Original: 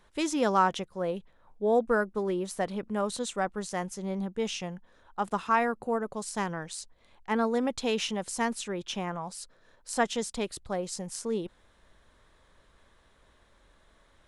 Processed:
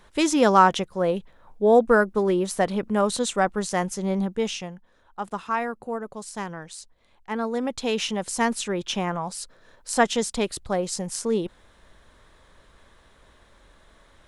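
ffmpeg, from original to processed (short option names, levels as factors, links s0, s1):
-af "volume=6.31,afade=t=out:st=4.19:d=0.56:silence=0.354813,afade=t=in:st=7.37:d=1.26:silence=0.398107"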